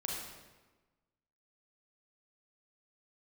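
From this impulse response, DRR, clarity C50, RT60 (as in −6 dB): −2.5 dB, 0.5 dB, 1.2 s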